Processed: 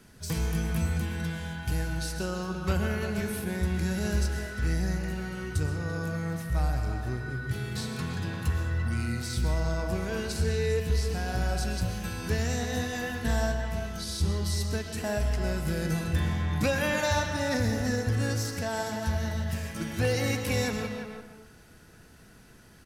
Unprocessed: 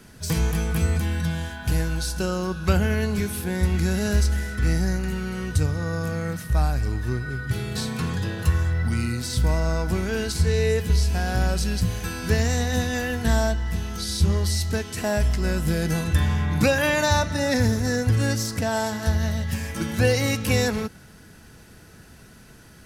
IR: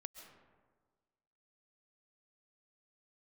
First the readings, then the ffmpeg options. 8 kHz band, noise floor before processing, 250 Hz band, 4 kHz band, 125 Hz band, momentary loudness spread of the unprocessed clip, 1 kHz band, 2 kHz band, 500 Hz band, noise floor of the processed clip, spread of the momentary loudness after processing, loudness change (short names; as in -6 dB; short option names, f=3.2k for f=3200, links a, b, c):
-6.5 dB, -48 dBFS, -6.0 dB, -6.0 dB, -6.0 dB, 6 LU, -5.5 dB, -5.0 dB, -5.5 dB, -53 dBFS, 6 LU, -6.0 dB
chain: -filter_complex "[0:a]asoftclip=type=hard:threshold=-12.5dB,asplit=2[a][b];[b]adelay=340,highpass=300,lowpass=3.4k,asoftclip=type=hard:threshold=-21.5dB,volume=-7dB[c];[a][c]amix=inputs=2:normalize=0[d];[1:a]atrim=start_sample=2205,afade=t=out:st=0.41:d=0.01,atrim=end_sample=18522,asetrate=48510,aresample=44100[e];[d][e]afir=irnorm=-1:irlink=0"